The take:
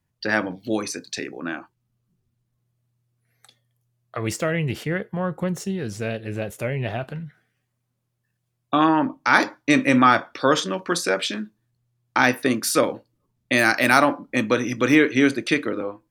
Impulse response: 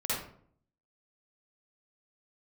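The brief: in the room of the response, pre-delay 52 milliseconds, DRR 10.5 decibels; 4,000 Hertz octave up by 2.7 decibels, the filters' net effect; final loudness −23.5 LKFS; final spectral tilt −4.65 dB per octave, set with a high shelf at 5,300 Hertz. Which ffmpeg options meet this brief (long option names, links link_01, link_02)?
-filter_complex "[0:a]equalizer=frequency=4000:width_type=o:gain=6.5,highshelf=frequency=5300:gain=-8,asplit=2[link_01][link_02];[1:a]atrim=start_sample=2205,adelay=52[link_03];[link_02][link_03]afir=irnorm=-1:irlink=0,volume=-17.5dB[link_04];[link_01][link_04]amix=inputs=2:normalize=0,volume=-2dB"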